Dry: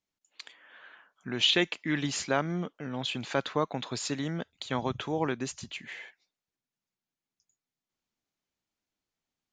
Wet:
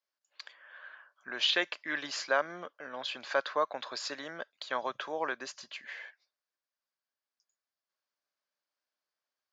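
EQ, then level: cabinet simulation 480–6600 Hz, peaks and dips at 580 Hz +9 dB, 1.1 kHz +7 dB, 1.6 kHz +9 dB, 4.8 kHz +7 dB; -5.0 dB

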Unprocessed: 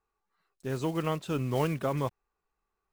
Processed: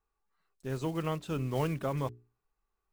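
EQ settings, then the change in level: bass shelf 83 Hz +9 dB; hum notches 60/120/180/240/300/360/420 Hz; -3.5 dB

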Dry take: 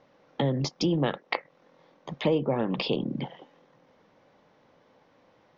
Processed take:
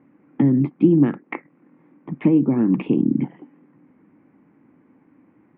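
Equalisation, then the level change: high-pass 170 Hz 6 dB/octave; elliptic low-pass 2.4 kHz, stop band 60 dB; resonant low shelf 400 Hz +10.5 dB, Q 3; 0.0 dB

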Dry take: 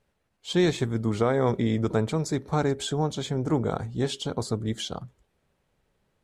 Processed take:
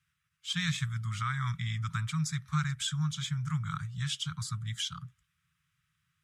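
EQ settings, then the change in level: high-pass 110 Hz 12 dB/octave; Chebyshev band-stop 160–1200 Hz, order 4; band-stop 4.3 kHz, Q 8.7; 0.0 dB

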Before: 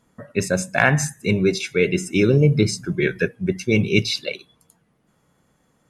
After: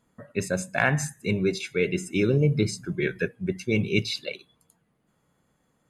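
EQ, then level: band-stop 5.6 kHz, Q 6.9; -6.0 dB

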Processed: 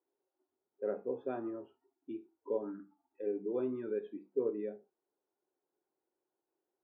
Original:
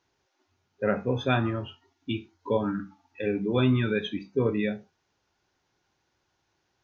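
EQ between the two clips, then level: ladder band-pass 450 Hz, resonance 45%; 0.0 dB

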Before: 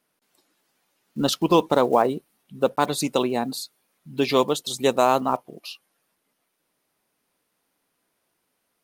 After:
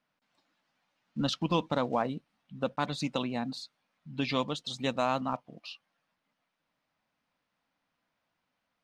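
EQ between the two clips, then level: dynamic bell 840 Hz, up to -7 dB, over -31 dBFS, Q 0.82; distance through air 150 m; peaking EQ 390 Hz -14.5 dB 0.52 oct; -2.5 dB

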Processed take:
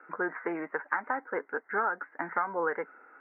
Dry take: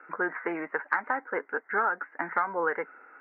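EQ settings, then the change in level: distance through air 460 m; 0.0 dB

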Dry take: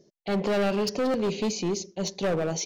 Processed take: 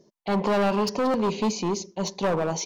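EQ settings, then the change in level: peaking EQ 220 Hz +3.5 dB 0.38 oct; peaking EQ 980 Hz +12 dB 0.56 oct; 0.0 dB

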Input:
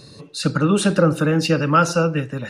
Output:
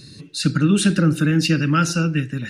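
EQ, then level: high-order bell 740 Hz -14.5 dB; +2.0 dB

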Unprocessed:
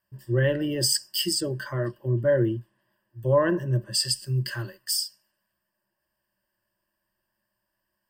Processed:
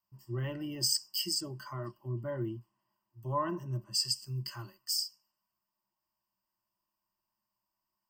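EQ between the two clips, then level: bass shelf 220 Hz -11.5 dB; peaking EQ 2.6 kHz -7 dB 1.1 oct; static phaser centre 2.5 kHz, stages 8; -2.0 dB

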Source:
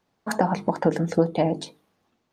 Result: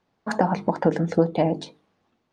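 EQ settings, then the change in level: distance through air 81 m; +1.0 dB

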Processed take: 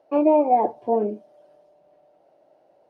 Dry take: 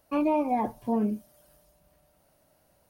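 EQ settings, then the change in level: band-pass 170–3600 Hz; high-order bell 520 Hz +13 dB; -2.5 dB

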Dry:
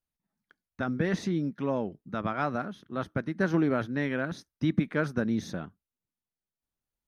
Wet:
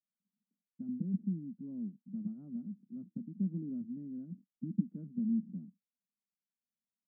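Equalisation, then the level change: Butterworth band-pass 210 Hz, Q 3; distance through air 450 m; -1.5 dB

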